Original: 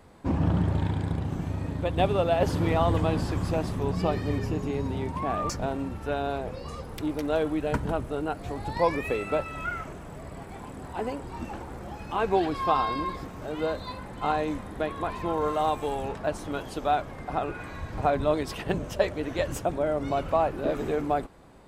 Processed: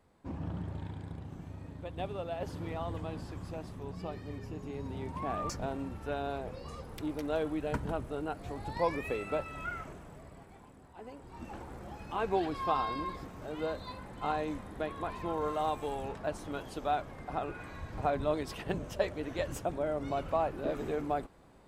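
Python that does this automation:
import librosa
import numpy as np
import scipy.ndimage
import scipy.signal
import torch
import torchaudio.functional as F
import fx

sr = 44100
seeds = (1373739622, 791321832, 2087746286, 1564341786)

y = fx.gain(x, sr, db=fx.line((4.39, -14.0), (5.25, -6.5), (9.9, -6.5), (10.95, -18.0), (11.58, -6.5)))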